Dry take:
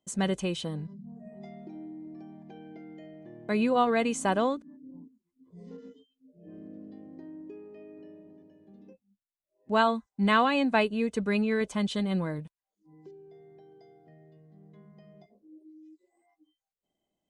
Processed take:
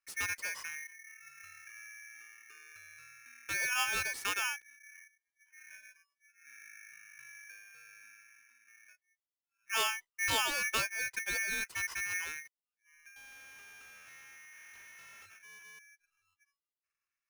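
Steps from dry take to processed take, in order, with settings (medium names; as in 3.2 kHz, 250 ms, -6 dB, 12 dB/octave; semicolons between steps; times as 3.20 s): 13.16–15.79 s: waveshaping leveller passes 5; polarity switched at an audio rate 2 kHz; trim -8.5 dB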